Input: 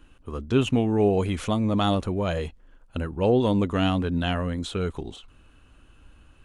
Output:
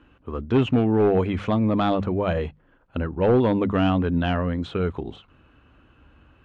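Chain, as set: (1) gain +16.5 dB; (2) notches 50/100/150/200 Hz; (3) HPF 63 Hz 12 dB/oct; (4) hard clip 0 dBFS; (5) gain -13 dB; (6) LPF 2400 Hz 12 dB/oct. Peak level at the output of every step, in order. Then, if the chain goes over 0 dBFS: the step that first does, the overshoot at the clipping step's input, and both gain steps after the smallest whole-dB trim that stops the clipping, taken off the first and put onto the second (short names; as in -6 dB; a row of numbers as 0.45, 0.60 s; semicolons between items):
+8.0, +7.5, +7.5, 0.0, -13.0, -12.5 dBFS; step 1, 7.5 dB; step 1 +8.5 dB, step 5 -5 dB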